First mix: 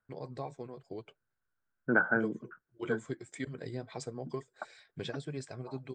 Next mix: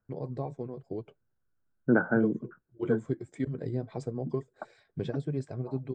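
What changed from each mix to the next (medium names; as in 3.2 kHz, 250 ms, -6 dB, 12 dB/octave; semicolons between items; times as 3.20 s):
master: add tilt shelf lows +9 dB, about 920 Hz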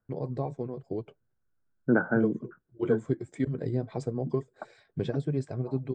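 first voice +3.0 dB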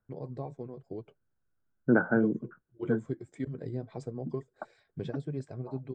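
first voice -6.5 dB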